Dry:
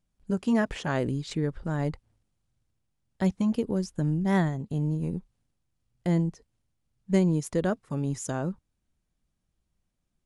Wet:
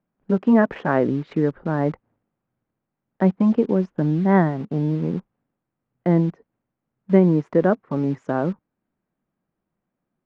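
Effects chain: three-band isolator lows -23 dB, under 160 Hz, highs -23 dB, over 2100 Hz; in parallel at -10 dB: bit-crush 7-bit; on the sum: air absorption 170 m; gain +8 dB

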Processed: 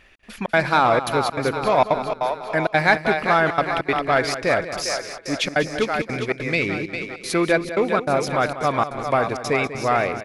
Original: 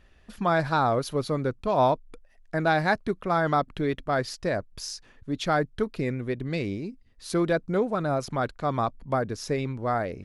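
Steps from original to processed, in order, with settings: low shelf 260 Hz -10 dB; split-band echo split 370 Hz, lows 0.157 s, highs 0.402 s, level -8 dB; step gate "xx.xxx.xxxx" 197 bpm -60 dB; in parallel at -6.5 dB: soft clip -24 dBFS, distortion -11 dB; on the sum: bell 2300 Hz +9.5 dB 0.48 oct; on a send: echo 0.194 s -12.5 dB; on the sum: gain +5 dB

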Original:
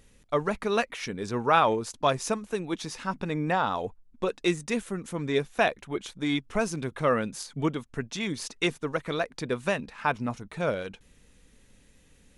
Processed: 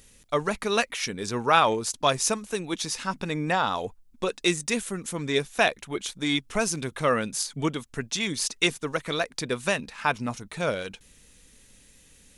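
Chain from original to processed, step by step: high shelf 2900 Hz +11.5 dB

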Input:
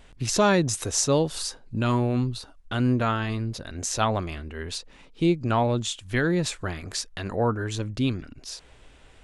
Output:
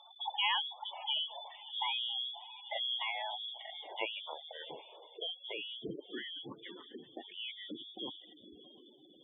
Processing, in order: inverted band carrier 3500 Hz; band-pass sweep 840 Hz -> 320 Hz, 2.56–6.39; in parallel at 0 dB: compressor 20:1, threshold -50 dBFS, peak gain reduction 19.5 dB; 5.29–7.32 on the sum: air absorption 93 m; on a send: diffused feedback echo 0.666 s, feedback 47%, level -14 dB; on the sum: spectral gate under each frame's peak -10 dB strong; gain +3.5 dB

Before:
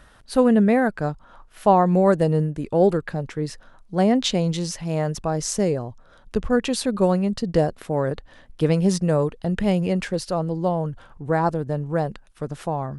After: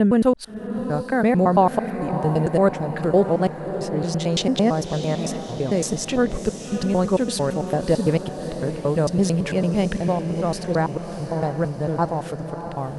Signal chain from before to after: slices in reverse order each 0.112 s, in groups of 6; diffused feedback echo 0.642 s, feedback 59%, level -10 dB

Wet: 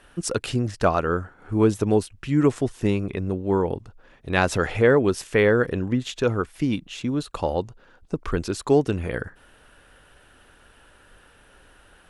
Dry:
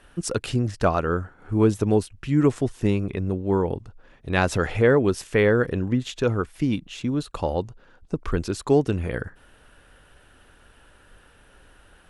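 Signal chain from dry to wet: low shelf 210 Hz -4 dB; gain +1.5 dB

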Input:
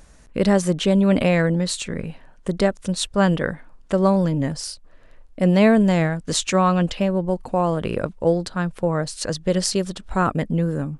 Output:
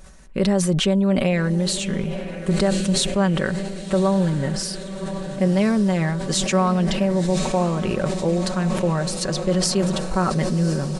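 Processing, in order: comb 5.3 ms, depth 56%; compressor 2:1, threshold -20 dBFS, peak gain reduction 7 dB; on a send: diffused feedback echo 1.059 s, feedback 69%, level -12 dB; on the sum: sustainer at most 34 dB/s

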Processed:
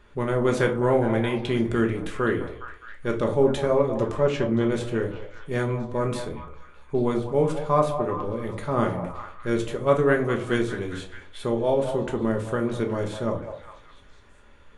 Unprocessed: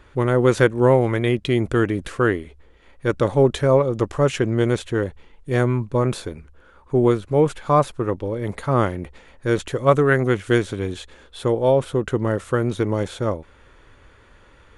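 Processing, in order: 4.17–4.72 LPF 4900 Hz 12 dB/oct; delay with a stepping band-pass 0.205 s, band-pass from 710 Hz, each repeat 0.7 oct, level -6.5 dB; shoebox room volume 250 m³, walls furnished, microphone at 1.3 m; gain -6.5 dB

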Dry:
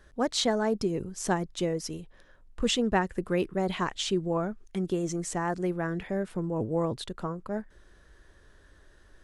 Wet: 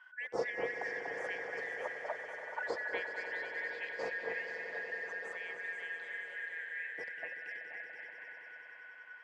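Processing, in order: four-band scrambler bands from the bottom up 4123; bell 820 Hz +5.5 dB 0.64 oct; echo with dull and thin repeats by turns 0.241 s, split 2300 Hz, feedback 53%, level -3 dB; auto-wah 470–1100 Hz, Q 8.7, down, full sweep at -26 dBFS; swelling echo 95 ms, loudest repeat 5, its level -13 dB; gain +14 dB

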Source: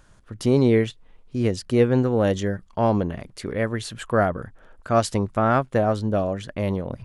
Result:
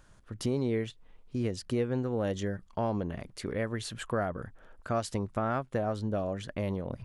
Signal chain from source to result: compressor 2.5:1, threshold -25 dBFS, peak gain reduction 9 dB; gain -4.5 dB

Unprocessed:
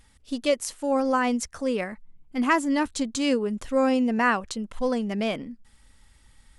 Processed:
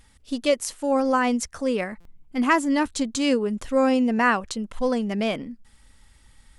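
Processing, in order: stuck buffer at 2, samples 256, times 8; gain +2 dB

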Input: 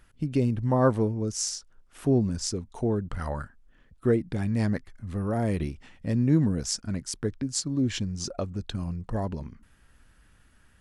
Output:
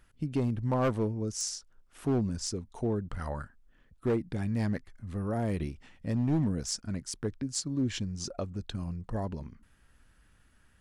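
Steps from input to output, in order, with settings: overloaded stage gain 18.5 dB; gain -4 dB

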